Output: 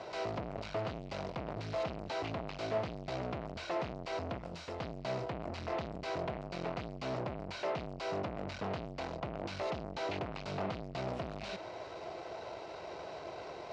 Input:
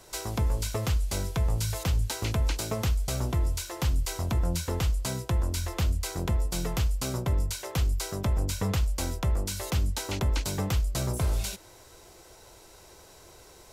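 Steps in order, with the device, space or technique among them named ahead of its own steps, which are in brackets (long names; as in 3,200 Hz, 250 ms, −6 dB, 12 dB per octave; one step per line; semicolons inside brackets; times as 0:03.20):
0:04.38–0:04.80: first-order pre-emphasis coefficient 0.8
guitar amplifier (tube saturation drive 44 dB, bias 0.5; bass and treble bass −6 dB, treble −1 dB; loudspeaker in its box 96–3,900 Hz, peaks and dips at 160 Hz +3 dB, 660 Hz +9 dB, 1,700 Hz −4 dB, 3,400 Hz −6 dB)
level +10.5 dB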